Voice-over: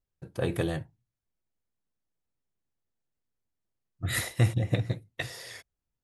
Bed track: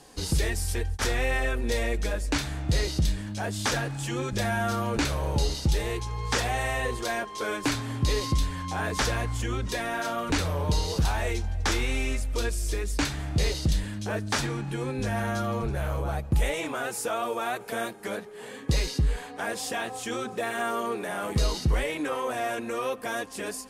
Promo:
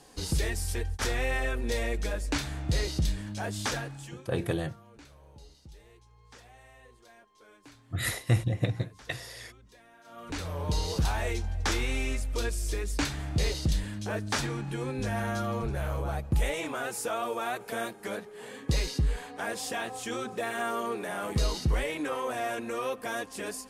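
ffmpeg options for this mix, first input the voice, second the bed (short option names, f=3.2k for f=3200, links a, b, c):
-filter_complex "[0:a]adelay=3900,volume=-1dB[a];[1:a]volume=21dB,afade=t=out:st=3.58:d=0.69:silence=0.0668344,afade=t=in:st=10.04:d=0.82:silence=0.0630957[b];[a][b]amix=inputs=2:normalize=0"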